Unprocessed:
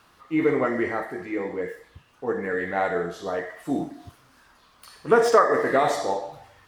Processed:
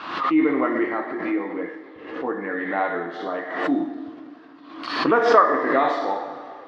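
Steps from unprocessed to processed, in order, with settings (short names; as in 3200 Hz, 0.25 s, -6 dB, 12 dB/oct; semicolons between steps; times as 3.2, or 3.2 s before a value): speaker cabinet 260–4000 Hz, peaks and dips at 300 Hz +9 dB, 440 Hz -5 dB, 1100 Hz +5 dB; plate-style reverb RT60 2.7 s, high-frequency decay 0.8×, DRR 9.5 dB; backwards sustainer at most 61 dB/s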